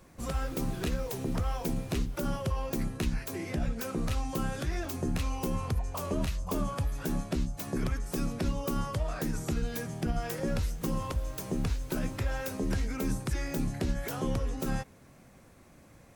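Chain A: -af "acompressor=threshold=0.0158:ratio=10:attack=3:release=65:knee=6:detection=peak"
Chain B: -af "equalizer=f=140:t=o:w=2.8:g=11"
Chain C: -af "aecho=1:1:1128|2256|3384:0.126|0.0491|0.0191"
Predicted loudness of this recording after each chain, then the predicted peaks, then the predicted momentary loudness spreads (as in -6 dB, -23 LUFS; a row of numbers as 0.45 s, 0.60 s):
-41.5 LUFS, -26.5 LUFS, -33.5 LUFS; -24.5 dBFS, -11.0 dBFS, -20.5 dBFS; 2 LU, 3 LU, 3 LU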